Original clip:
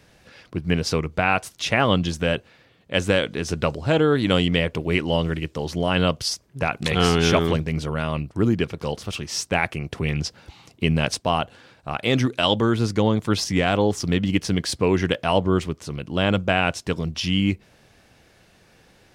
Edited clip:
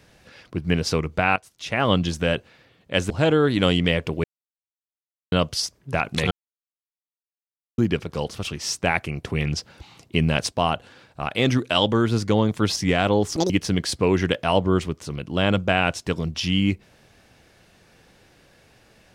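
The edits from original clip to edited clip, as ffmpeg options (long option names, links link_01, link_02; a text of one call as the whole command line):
ffmpeg -i in.wav -filter_complex "[0:a]asplit=9[link_01][link_02][link_03][link_04][link_05][link_06][link_07][link_08][link_09];[link_01]atrim=end=1.36,asetpts=PTS-STARTPTS,afade=type=out:start_time=1.356:duration=0.004:curve=hsin:silence=0.177828[link_10];[link_02]atrim=start=1.36:end=3.102,asetpts=PTS-STARTPTS,afade=type=in:duration=0.54:curve=qua:silence=0.177828[link_11];[link_03]atrim=start=3.778:end=4.92,asetpts=PTS-STARTPTS,afade=type=out:start_time=1.138:duration=0.004:curve=hsin[link_12];[link_04]atrim=start=4.92:end=6,asetpts=PTS-STARTPTS,volume=0[link_13];[link_05]atrim=start=6:end=6.99,asetpts=PTS-STARTPTS,afade=type=in:duration=0.004:curve=hsin,afade=type=out:start_time=0.986:duration=0.004:curve=hsin[link_14];[link_06]atrim=start=6.99:end=8.46,asetpts=PTS-STARTPTS,volume=0[link_15];[link_07]atrim=start=8.46:end=14.044,asetpts=PTS-STARTPTS,afade=type=in:duration=0.004:curve=hsin[link_16];[link_08]atrim=start=14.04:end=14.3,asetpts=PTS-STARTPTS,asetrate=82467,aresample=44100[link_17];[link_09]atrim=start=14.296[link_18];[link_10][link_11]concat=n=2:v=0:a=1[link_19];[link_12][link_13][link_14][link_15][link_16]concat=n=5:v=0:a=1[link_20];[link_19][link_20]acrossfade=duration=0.004:curve1=hsin:curve2=hsin[link_21];[link_21][link_17]acrossfade=duration=0.004:curve1=hsin:curve2=hsin[link_22];[link_22][link_18]acrossfade=duration=0.004:curve1=hsin:curve2=hsin" out.wav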